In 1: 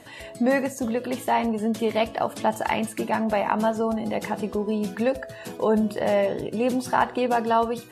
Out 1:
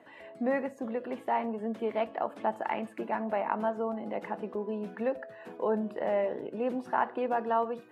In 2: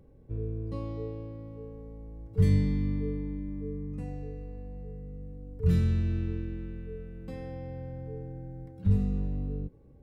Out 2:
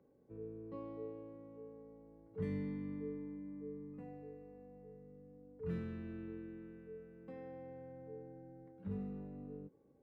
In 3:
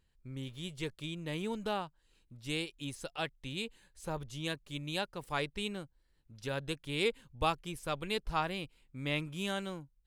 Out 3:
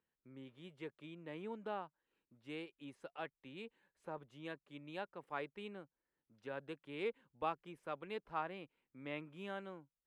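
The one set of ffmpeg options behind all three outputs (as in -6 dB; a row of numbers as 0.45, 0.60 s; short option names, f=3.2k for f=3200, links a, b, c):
-filter_complex "[0:a]highpass=f=140:p=1,acrossover=split=180 2400:gain=0.2 1 0.0891[a][b][c];[a][b][c]amix=inputs=3:normalize=0,volume=-6.5dB"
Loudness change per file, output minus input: -8.0, -15.0, -9.5 LU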